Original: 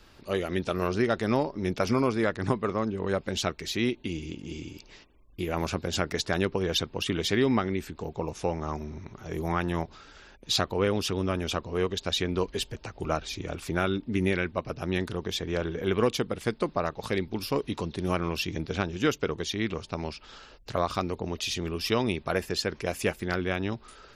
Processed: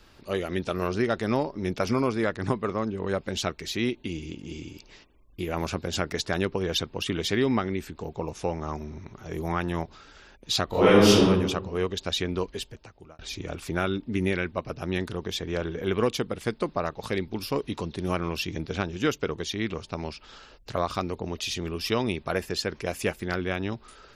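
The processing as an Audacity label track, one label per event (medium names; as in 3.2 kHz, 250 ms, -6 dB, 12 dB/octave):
10.660000	11.230000	reverb throw, RT60 1 s, DRR -11 dB
12.300000	13.190000	fade out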